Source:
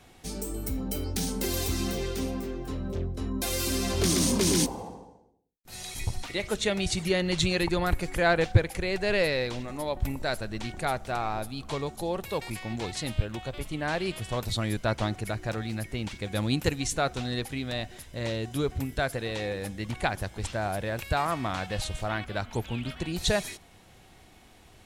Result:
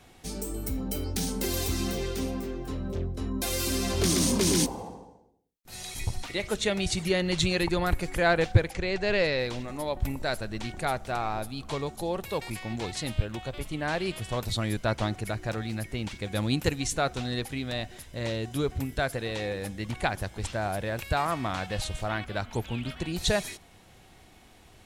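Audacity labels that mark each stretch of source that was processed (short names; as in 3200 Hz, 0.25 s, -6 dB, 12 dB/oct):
8.710000	9.390000	LPF 7200 Hz 24 dB/oct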